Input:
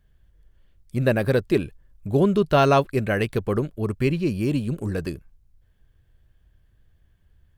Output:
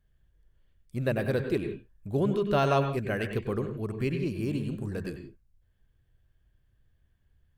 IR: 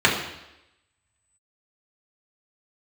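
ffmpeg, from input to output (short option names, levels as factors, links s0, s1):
-filter_complex "[0:a]asplit=2[s0][s1];[1:a]atrim=start_sample=2205,atrim=end_sample=4410,adelay=94[s2];[s1][s2]afir=irnorm=-1:irlink=0,volume=0.0473[s3];[s0][s3]amix=inputs=2:normalize=0,volume=0.398"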